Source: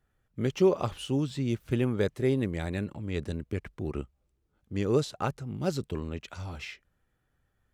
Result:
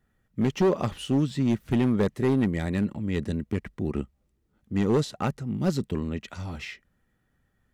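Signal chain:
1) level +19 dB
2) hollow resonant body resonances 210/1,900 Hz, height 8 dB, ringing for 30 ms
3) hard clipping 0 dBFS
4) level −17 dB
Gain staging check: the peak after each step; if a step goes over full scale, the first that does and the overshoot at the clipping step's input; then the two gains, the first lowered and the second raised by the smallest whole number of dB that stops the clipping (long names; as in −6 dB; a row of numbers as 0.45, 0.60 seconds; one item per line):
+6.0, +9.0, 0.0, −17.0 dBFS
step 1, 9.0 dB
step 1 +10 dB, step 4 −8 dB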